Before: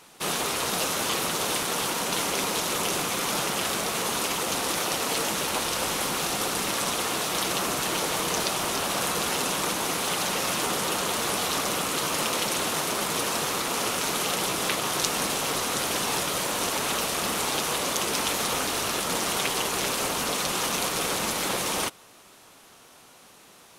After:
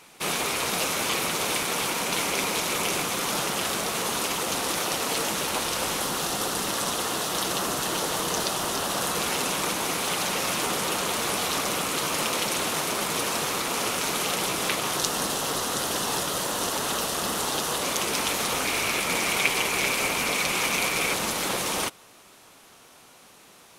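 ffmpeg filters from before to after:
-af "asetnsamples=n=441:p=0,asendcmd='3.03 equalizer g 0;5.99 equalizer g -6;9.14 equalizer g 2;14.96 equalizer g -7.5;17.82 equalizer g 3;18.65 equalizer g 13;21.14 equalizer g 1.5',equalizer=f=2.3k:t=o:w=0.29:g=6"

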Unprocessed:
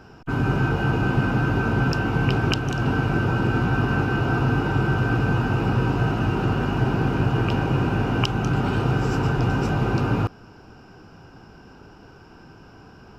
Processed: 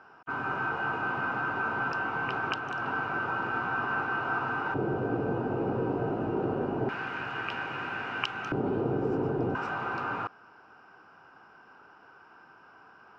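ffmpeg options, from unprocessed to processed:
-af "asetnsamples=n=441:p=0,asendcmd='4.74 bandpass f 480;6.89 bandpass f 1800;8.52 bandpass f 420;9.55 bandpass f 1300',bandpass=f=1.2k:t=q:w=1.5:csg=0"

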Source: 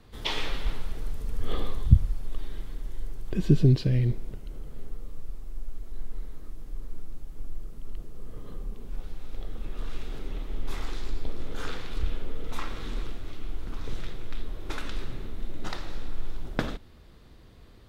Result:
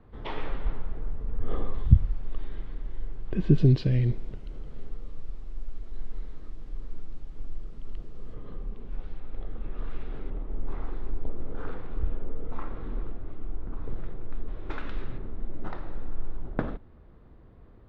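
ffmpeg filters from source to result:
-af "asetnsamples=n=441:p=0,asendcmd='1.74 lowpass f 2500;3.58 lowpass f 4300;8.34 lowpass f 2700;9.2 lowpass f 1900;10.3 lowpass f 1100;14.48 lowpass f 2100;15.18 lowpass f 1300',lowpass=1.4k"

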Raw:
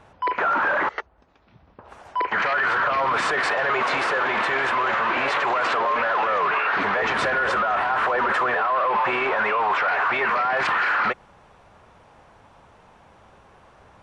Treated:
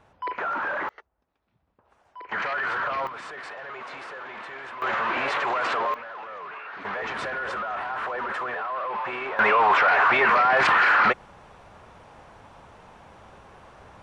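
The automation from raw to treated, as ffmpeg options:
-af "asetnsamples=n=441:p=0,asendcmd='0.89 volume volume -18dB;2.29 volume volume -6dB;3.07 volume volume -16dB;4.82 volume volume -3.5dB;5.94 volume volume -16.5dB;6.85 volume volume -8.5dB;9.39 volume volume 3dB',volume=-7dB"

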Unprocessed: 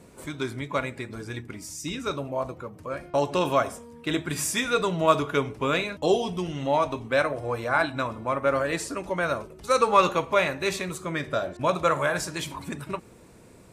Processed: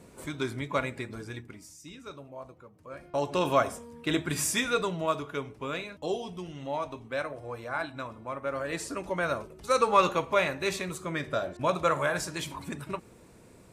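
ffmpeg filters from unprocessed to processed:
-af "volume=18dB,afade=t=out:st=1:d=0.78:silence=0.237137,afade=t=in:st=2.8:d=0.8:silence=0.223872,afade=t=out:st=4.52:d=0.62:silence=0.375837,afade=t=in:st=8.53:d=0.4:silence=0.473151"

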